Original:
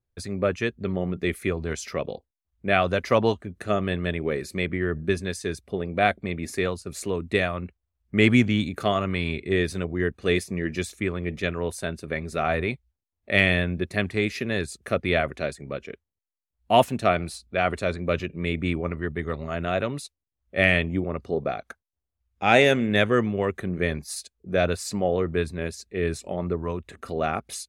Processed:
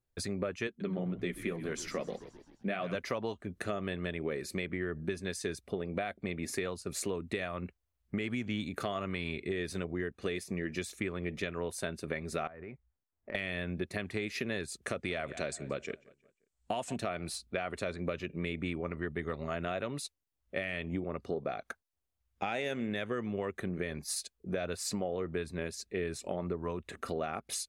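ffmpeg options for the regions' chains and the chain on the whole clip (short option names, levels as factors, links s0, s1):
-filter_complex "[0:a]asettb=1/sr,asplit=3[s0][s1][s2];[s0]atrim=end=0.674[s3];[s1]atrim=start=0.67:end=2.95,asetpts=PTS-STARTPTS,afade=t=in:d=0.004:c=qsin,afade=t=out:st=2.276:d=0.004:c=qsin,lowshelf=f=140:t=q:w=3:g=-8.5,flanger=delay=1.7:depth=7.4:regen=-44:speed=1.9:shape=triangular,asplit=7[s4][s5][s6][s7][s8][s9][s10];[s5]adelay=130,afreqshift=-69,volume=0.158[s11];[s6]adelay=260,afreqshift=-138,volume=0.0923[s12];[s7]adelay=390,afreqshift=-207,volume=0.0531[s13];[s8]adelay=520,afreqshift=-276,volume=0.0309[s14];[s9]adelay=650,afreqshift=-345,volume=0.018[s15];[s10]adelay=780,afreqshift=-414,volume=0.0104[s16];[s4][s11][s12][s13][s14][s15][s16]amix=inputs=7:normalize=0,atrim=end_sample=100548[s17];[s2]atrim=start=2.946[s18];[s3][s17]acrossfade=d=0.004:c1=hsin:c2=qsin[s19];[s19][s18]acrossfade=d=0.004:c1=qsin:c2=hsin,asettb=1/sr,asplit=3[s20][s21][s22];[s20]atrim=end=12.474[s23];[s21]atrim=start=12.47:end=13.35,asetpts=PTS-STARTPTS,afade=t=in:d=0.004:c=qsin,afade=t=out:st=0.876:d=0.004:c=qsin,lowpass=f=1900:w=0.5412,lowpass=f=1900:w=1.3066,acompressor=threshold=0.0126:ratio=12:attack=3.2:release=140:knee=1:detection=peak[s24];[s22]atrim=start=13.346[s25];[s23][s24]acrossfade=d=0.004:c1=hsin:c2=qsin[s26];[s26][s25]acrossfade=d=0.004:c1=qsin:c2=hsin,asettb=1/sr,asplit=3[s27][s28][s29];[s27]atrim=end=14.864[s30];[s28]atrim=start=14.86:end=16.96,asetpts=PTS-STARTPTS,afade=t=in:d=0.004:c=qsin,afade=t=out:st=2.096:d=0.004:c=qsin,lowpass=f=7900:t=q:w=3.7,asplit=2[s31][s32];[s32]adelay=177,lowpass=f=3600:p=1,volume=0.0708,asplit=2[s33][s34];[s34]adelay=177,lowpass=f=3600:p=1,volume=0.41,asplit=2[s35][s36];[s36]adelay=177,lowpass=f=3600:p=1,volume=0.41[s37];[s31][s33][s35][s37]amix=inputs=4:normalize=0,atrim=end_sample=92610,acompressor=threshold=0.0631:ratio=2:attack=3.2:release=140:knee=1:detection=peak[s38];[s29]atrim=start=16.956[s39];[s30][s38]acrossfade=d=0.004:c1=hsin:c2=qsin[s40];[s40][s39]acrossfade=d=0.004:c1=qsin:c2=hsin,alimiter=limit=0.211:level=0:latency=1:release=182,equalizer=f=61:w=0.55:g=-6,acompressor=threshold=0.0251:ratio=5"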